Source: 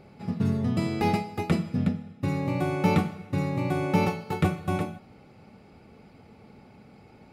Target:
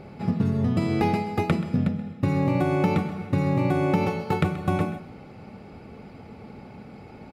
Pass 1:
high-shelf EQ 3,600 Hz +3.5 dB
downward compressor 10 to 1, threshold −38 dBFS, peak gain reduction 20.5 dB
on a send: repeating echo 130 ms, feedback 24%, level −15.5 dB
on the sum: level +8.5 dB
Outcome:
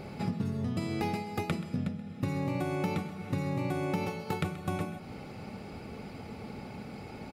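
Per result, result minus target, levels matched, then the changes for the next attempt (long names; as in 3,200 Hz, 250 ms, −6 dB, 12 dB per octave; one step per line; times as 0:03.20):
8,000 Hz band +9.5 dB; downward compressor: peak gain reduction +9.5 dB
change: high-shelf EQ 3,600 Hz −6.5 dB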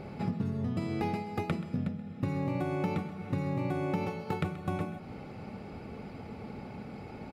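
downward compressor: peak gain reduction +9.5 dB
change: downward compressor 10 to 1, threshold −27.5 dBFS, peak gain reduction 11 dB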